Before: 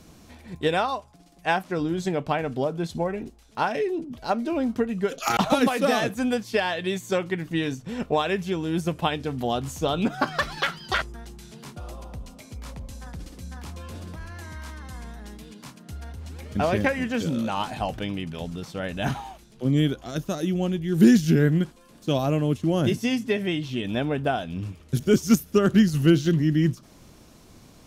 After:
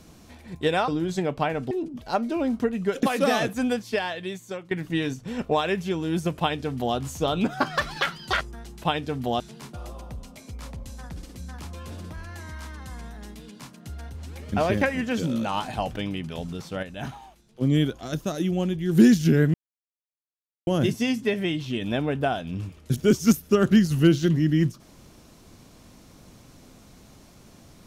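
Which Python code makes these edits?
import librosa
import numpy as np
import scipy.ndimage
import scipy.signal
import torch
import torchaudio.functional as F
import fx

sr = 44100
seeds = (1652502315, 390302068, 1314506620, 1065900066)

y = fx.edit(x, sr, fx.cut(start_s=0.88, length_s=0.89),
    fx.cut(start_s=2.6, length_s=1.27),
    fx.cut(start_s=5.19, length_s=0.45),
    fx.fade_out_to(start_s=6.25, length_s=1.07, floor_db=-14.0),
    fx.duplicate(start_s=8.99, length_s=0.58, to_s=11.43),
    fx.clip_gain(start_s=18.86, length_s=0.78, db=-7.5),
    fx.silence(start_s=21.57, length_s=1.13), tone=tone)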